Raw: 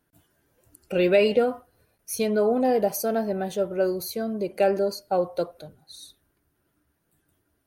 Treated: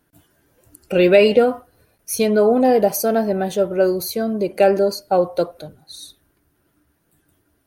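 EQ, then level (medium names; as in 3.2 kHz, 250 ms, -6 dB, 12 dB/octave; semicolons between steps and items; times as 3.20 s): peaking EQ 300 Hz +2.5 dB 0.21 oct; +7.0 dB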